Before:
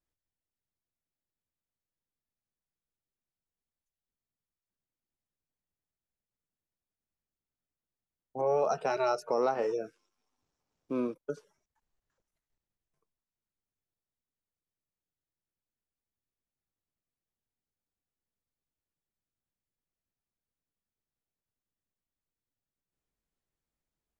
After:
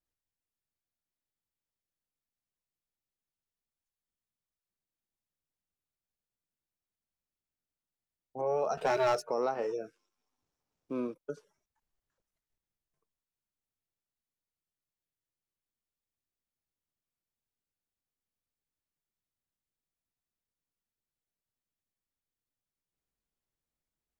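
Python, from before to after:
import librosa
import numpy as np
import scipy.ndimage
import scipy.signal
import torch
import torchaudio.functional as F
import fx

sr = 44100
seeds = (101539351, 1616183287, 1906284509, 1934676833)

y = fx.leveller(x, sr, passes=2, at=(8.77, 9.22))
y = F.gain(torch.from_numpy(y), -3.0).numpy()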